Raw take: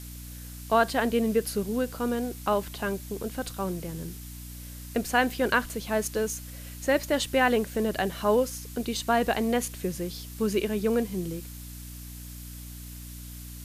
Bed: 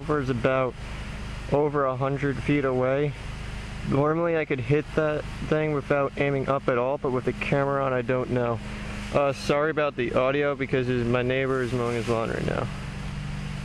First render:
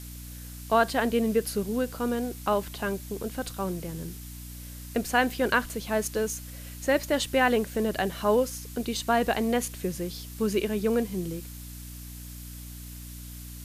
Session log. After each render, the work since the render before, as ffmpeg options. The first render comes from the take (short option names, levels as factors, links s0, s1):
-af anull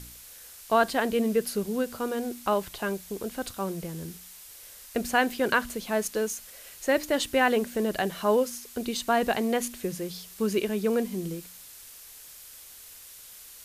-af "bandreject=f=60:t=h:w=4,bandreject=f=120:t=h:w=4,bandreject=f=180:t=h:w=4,bandreject=f=240:t=h:w=4,bandreject=f=300:t=h:w=4"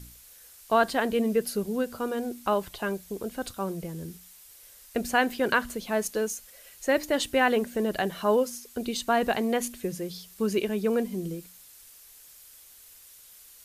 -af "afftdn=nr=6:nf=-48"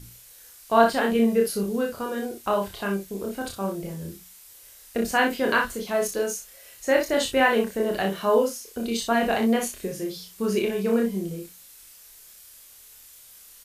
-filter_complex "[0:a]asplit=2[s0][s1];[s1]adelay=26,volume=0.596[s2];[s0][s2]amix=inputs=2:normalize=0,aecho=1:1:35|61:0.531|0.188"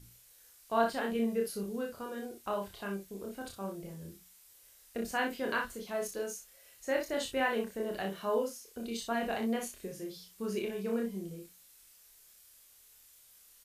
-af "volume=0.282"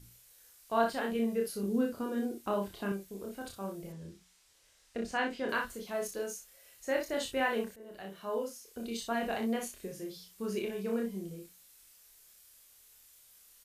-filter_complex "[0:a]asettb=1/sr,asplit=3[s0][s1][s2];[s0]atrim=end=1.634[s3];[s1]atrim=start=1.63:end=2.92,asetpts=PTS-STARTPTS,afade=t=in:d=0.004:c=qsin,afade=t=out:st=1.286:d=0.004:c=qsin,equalizer=f=270:w=1.3:g=11[s4];[s2]atrim=start=2.916[s5];[s3][s4]acrossfade=d=0.004:c1=hsin:c2=qsin[s6];[s6][s5]acrossfade=d=0.004:c1=qsin:c2=hsin,asettb=1/sr,asplit=3[s7][s8][s9];[s7]atrim=end=3.924[s10];[s8]atrim=start=3.92:end=5.49,asetpts=PTS-STARTPTS,afade=t=in:d=0.004:c=qsin,afade=t=out:st=1.566:d=0.004:c=qsin,lowpass=6600[s11];[s9]atrim=start=5.486[s12];[s10][s11]acrossfade=d=0.004:c1=hsin:c2=qsin[s13];[s13][s12]acrossfade=d=0.004:c1=qsin:c2=hsin,asplit=2[s14][s15];[s14]atrim=end=7.76,asetpts=PTS-STARTPTS,afade=t=out:st=7.756:d=0.004:c=hsin:silence=0.125893[s16];[s15]atrim=start=7.76,asetpts=PTS-STARTPTS,afade=t=in:d=1.01:silence=0.125893[s17];[s16][s17]concat=n=2:v=0:a=1"